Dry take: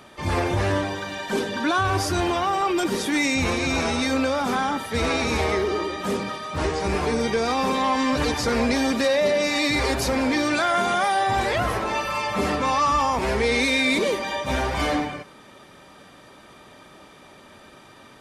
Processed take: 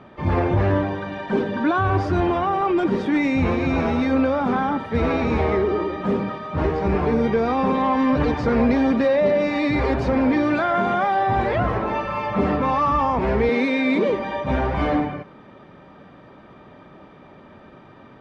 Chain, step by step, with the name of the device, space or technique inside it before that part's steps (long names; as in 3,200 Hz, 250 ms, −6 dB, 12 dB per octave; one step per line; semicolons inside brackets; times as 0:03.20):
phone in a pocket (low-pass filter 3,200 Hz 12 dB per octave; parametric band 160 Hz +4 dB 1.4 octaves; high-shelf EQ 2,200 Hz −12 dB)
0:13.49–0:14.10: Butterworth high-pass 160 Hz
level +3 dB